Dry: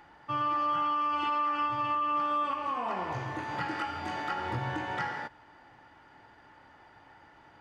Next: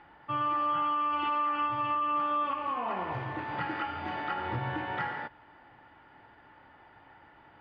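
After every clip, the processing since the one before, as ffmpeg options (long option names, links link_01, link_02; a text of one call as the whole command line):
ffmpeg -i in.wav -af "lowpass=frequency=3600:width=0.5412,lowpass=frequency=3600:width=1.3066" out.wav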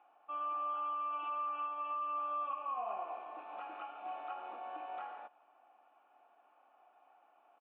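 ffmpeg -i in.wav -filter_complex "[0:a]asplit=3[link_01][link_02][link_03];[link_01]bandpass=frequency=730:width_type=q:width=8,volume=0dB[link_04];[link_02]bandpass=frequency=1090:width_type=q:width=8,volume=-6dB[link_05];[link_03]bandpass=frequency=2440:width_type=q:width=8,volume=-9dB[link_06];[link_04][link_05][link_06]amix=inputs=3:normalize=0,afftfilt=real='re*between(b*sr/4096,190,4300)':imag='im*between(b*sr/4096,190,4300)':win_size=4096:overlap=0.75,asplit=2[link_07][link_08];[link_08]adelay=151.6,volume=-28dB,highshelf=frequency=4000:gain=-3.41[link_09];[link_07][link_09]amix=inputs=2:normalize=0" out.wav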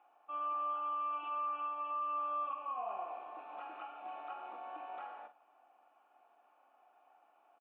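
ffmpeg -i in.wav -filter_complex "[0:a]asplit=2[link_01][link_02];[link_02]adelay=44,volume=-10dB[link_03];[link_01][link_03]amix=inputs=2:normalize=0,volume=-1.5dB" out.wav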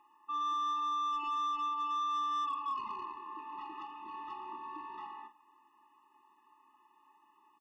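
ffmpeg -i in.wav -filter_complex "[0:a]acrossover=split=540[link_01][link_02];[link_02]asoftclip=type=tanh:threshold=-40dB[link_03];[link_01][link_03]amix=inputs=2:normalize=0,afftfilt=real='re*eq(mod(floor(b*sr/1024/420),2),0)':imag='im*eq(mod(floor(b*sr/1024/420),2),0)':win_size=1024:overlap=0.75,volume=8dB" out.wav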